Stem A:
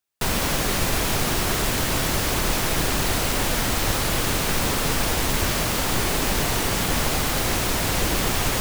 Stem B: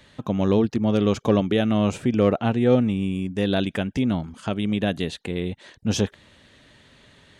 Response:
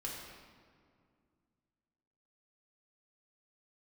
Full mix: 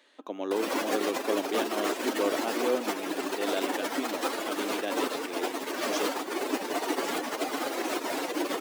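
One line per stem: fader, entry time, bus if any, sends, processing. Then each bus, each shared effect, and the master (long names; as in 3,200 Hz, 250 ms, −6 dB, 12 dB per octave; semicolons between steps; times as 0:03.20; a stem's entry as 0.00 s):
+1.5 dB, 0.30 s, no send, expanding power law on the bin magnitudes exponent 1.9
−7.5 dB, 0.00 s, send −22.5 dB, no processing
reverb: on, RT60 2.2 s, pre-delay 6 ms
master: elliptic high-pass filter 290 Hz, stop band 80 dB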